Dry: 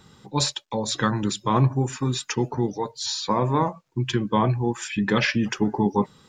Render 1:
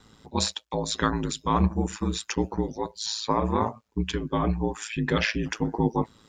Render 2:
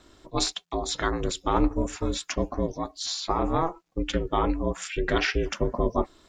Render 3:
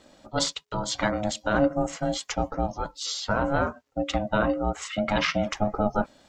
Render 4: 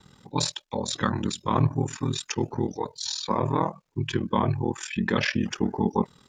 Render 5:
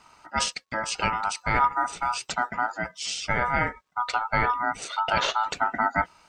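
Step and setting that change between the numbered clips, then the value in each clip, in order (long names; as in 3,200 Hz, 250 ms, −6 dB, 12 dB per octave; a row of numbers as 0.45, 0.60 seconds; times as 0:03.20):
ring modulation, frequency: 55, 170, 420, 20, 1,100 Hertz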